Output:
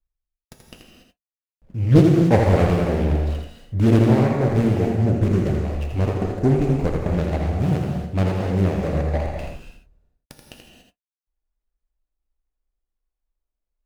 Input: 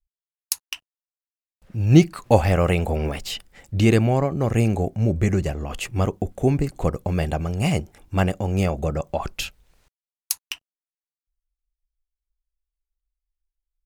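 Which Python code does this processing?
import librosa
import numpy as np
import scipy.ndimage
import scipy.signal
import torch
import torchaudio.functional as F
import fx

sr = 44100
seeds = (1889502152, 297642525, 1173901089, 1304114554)

p1 = scipy.ndimage.median_filter(x, 41, mode='constant')
p2 = p1 + fx.echo_single(p1, sr, ms=82, db=-6.0, dry=0)
p3 = fx.rev_gated(p2, sr, seeds[0], gate_ms=310, shape='flat', drr_db=1.0)
y = fx.doppler_dist(p3, sr, depth_ms=0.7)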